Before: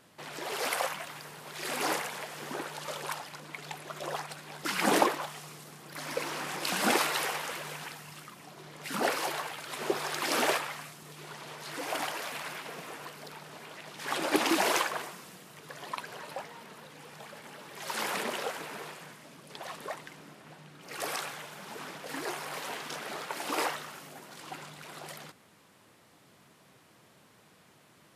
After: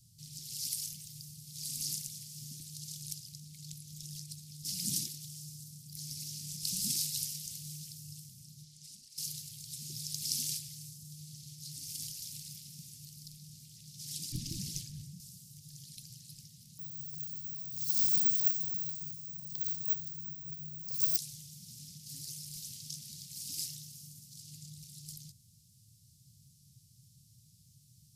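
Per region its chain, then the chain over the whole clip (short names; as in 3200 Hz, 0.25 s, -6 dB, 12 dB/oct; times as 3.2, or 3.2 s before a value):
8.64–9.18 LPF 9700 Hz + low shelf 420 Hz -10.5 dB + compressor 10:1, threshold -43 dBFS
14.32–15.2 tilt -3 dB/oct + overloaded stage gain 15 dB
16.79–21.17 small resonant body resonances 250/740 Hz, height 10 dB, ringing for 30 ms + careless resampling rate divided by 2×, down filtered, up zero stuff
whole clip: elliptic band-stop 130–5100 Hz, stop band 70 dB; low shelf 220 Hz +8 dB; gain +3 dB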